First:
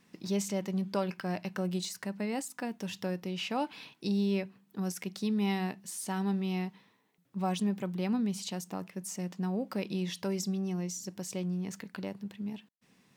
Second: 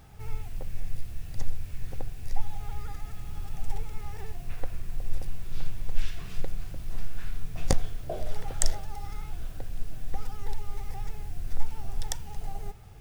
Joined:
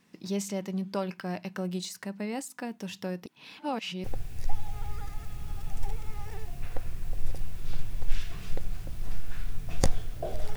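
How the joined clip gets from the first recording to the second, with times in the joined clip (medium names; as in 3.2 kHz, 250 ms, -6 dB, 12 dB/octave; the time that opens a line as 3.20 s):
first
3.26–4.04 s: reverse
4.04 s: go over to second from 1.91 s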